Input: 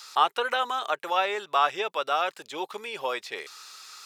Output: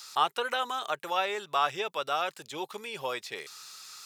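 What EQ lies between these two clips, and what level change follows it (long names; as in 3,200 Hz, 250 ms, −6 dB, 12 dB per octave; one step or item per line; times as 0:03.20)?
parametric band 130 Hz +13.5 dB 1.4 octaves
high-shelf EQ 4,600 Hz +8 dB
−5.0 dB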